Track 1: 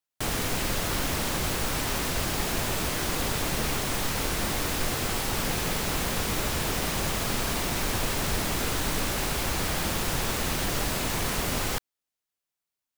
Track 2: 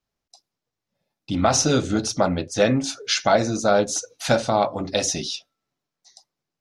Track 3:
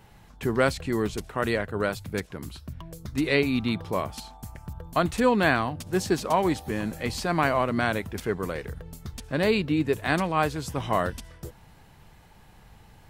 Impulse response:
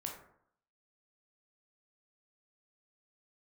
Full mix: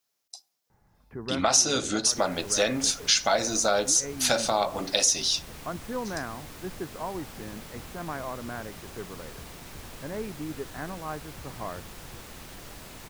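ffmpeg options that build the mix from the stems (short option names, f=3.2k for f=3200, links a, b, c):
-filter_complex "[0:a]adelay=1900,volume=-16dB[a];[1:a]highpass=f=480:p=1,crystalizer=i=2.5:c=0,volume=-1dB,asplit=2[b][c];[c]volume=-15dB[d];[2:a]lowpass=f=1.8k:w=0.5412,lowpass=f=1.8k:w=1.3066,adelay=700,volume=-11.5dB[e];[3:a]atrim=start_sample=2205[f];[d][f]afir=irnorm=-1:irlink=0[g];[a][b][e][g]amix=inputs=4:normalize=0,acompressor=threshold=-23dB:ratio=2"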